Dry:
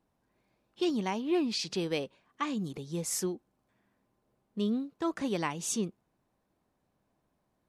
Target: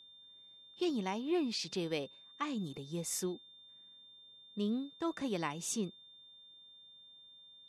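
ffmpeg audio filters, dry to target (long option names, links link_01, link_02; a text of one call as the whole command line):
ffmpeg -i in.wav -af "aeval=exprs='val(0)+0.00282*sin(2*PI*3600*n/s)':channel_layout=same,volume=-4.5dB" out.wav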